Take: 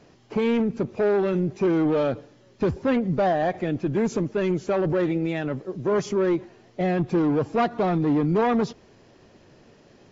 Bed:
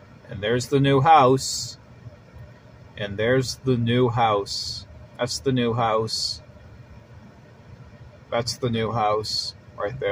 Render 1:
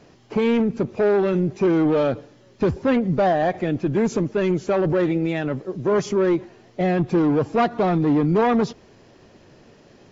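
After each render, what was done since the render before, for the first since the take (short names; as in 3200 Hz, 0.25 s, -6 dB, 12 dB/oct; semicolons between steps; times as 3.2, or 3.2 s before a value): gain +3 dB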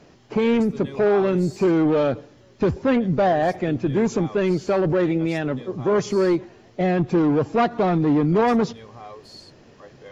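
add bed -18.5 dB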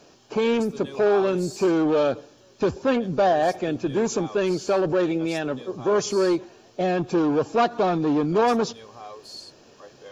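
tone controls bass -9 dB, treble +7 dB; notch 2000 Hz, Q 5.3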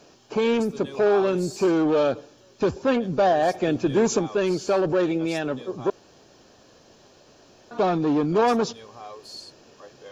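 3.61–4.19 gain +3 dB; 5.9–7.71 room tone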